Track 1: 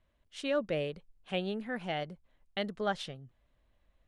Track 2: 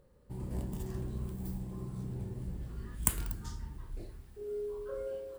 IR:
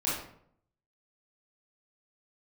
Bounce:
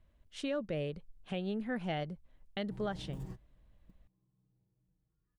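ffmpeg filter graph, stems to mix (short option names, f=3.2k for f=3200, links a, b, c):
-filter_complex "[0:a]lowshelf=f=300:g=9.5,volume=-1.5dB,asplit=2[a][b];[1:a]lowpass=f=3.1k:p=1,aecho=1:1:6.4:0.98,adelay=2400,volume=-6.5dB[c];[b]apad=whole_len=343687[d];[c][d]sidechaingate=range=-34dB:threshold=-52dB:ratio=16:detection=peak[e];[a][e]amix=inputs=2:normalize=0,alimiter=level_in=2dB:limit=-24dB:level=0:latency=1:release=411,volume=-2dB"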